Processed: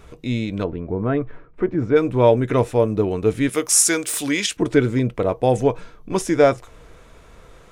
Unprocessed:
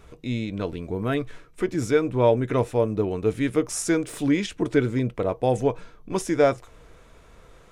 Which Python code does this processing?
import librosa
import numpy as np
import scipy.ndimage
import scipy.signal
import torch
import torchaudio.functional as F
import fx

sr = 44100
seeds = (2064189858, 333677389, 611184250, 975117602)

y = fx.lowpass(x, sr, hz=1400.0, slope=12, at=(0.63, 1.95), fade=0.02)
y = fx.tilt_eq(y, sr, slope=3.5, at=(3.49, 4.57))
y = y * librosa.db_to_amplitude(4.5)